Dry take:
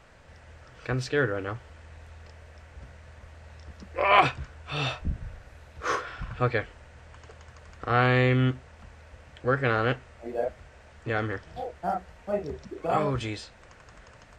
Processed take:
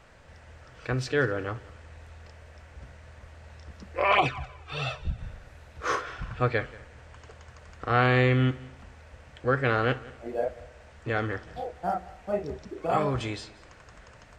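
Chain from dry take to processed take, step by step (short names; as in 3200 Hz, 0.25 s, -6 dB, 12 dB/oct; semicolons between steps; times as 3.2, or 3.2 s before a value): multi-head echo 61 ms, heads first and third, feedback 42%, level -21 dB; 4.12–5.19 envelope flanger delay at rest 3.1 ms, full sweep at -14.5 dBFS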